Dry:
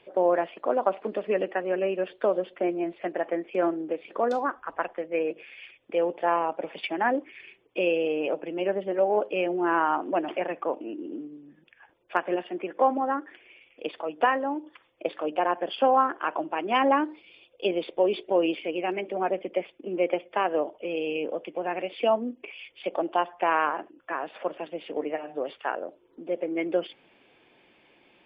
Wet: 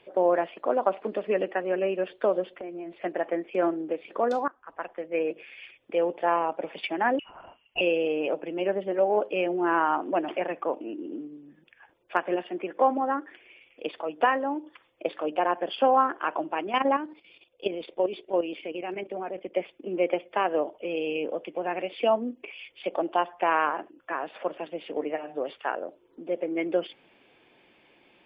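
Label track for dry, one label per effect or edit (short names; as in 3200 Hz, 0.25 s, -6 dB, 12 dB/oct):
2.530000	2.960000	compressor 8:1, threshold -34 dBFS
4.480000	5.200000	fade in, from -22.5 dB
7.190000	7.810000	inverted band carrier 3200 Hz
16.620000	19.550000	level quantiser steps of 11 dB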